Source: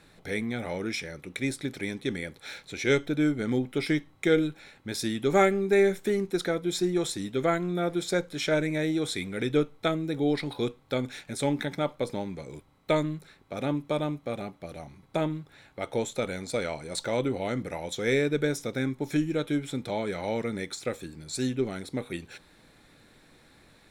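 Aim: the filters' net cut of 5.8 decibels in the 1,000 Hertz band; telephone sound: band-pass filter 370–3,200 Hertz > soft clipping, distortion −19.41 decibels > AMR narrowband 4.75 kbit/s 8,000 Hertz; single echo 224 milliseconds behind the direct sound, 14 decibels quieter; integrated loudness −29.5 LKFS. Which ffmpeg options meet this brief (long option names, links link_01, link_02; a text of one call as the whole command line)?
ffmpeg -i in.wav -af "highpass=370,lowpass=3200,equalizer=frequency=1000:width_type=o:gain=-8.5,aecho=1:1:224:0.2,asoftclip=threshold=-19dB,volume=6dB" -ar 8000 -c:a libopencore_amrnb -b:a 4750 out.amr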